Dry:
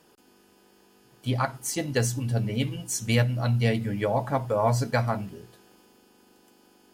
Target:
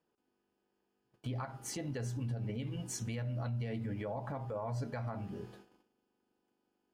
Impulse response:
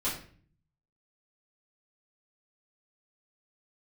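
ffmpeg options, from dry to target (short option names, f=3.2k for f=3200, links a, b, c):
-af "bandreject=f=200.1:t=h:w=4,bandreject=f=400.2:t=h:w=4,bandreject=f=600.3:t=h:w=4,bandreject=f=800.4:t=h:w=4,bandreject=f=1.0005k:t=h:w=4,bandreject=f=1.2006k:t=h:w=4,bandreject=f=1.4007k:t=h:w=4,bandreject=f=1.6008k:t=h:w=4,agate=range=-22dB:threshold=-54dB:ratio=16:detection=peak,lowpass=f=2k:p=1,acompressor=threshold=-36dB:ratio=3,alimiter=level_in=7.5dB:limit=-24dB:level=0:latency=1:release=60,volume=-7.5dB,volume=1dB"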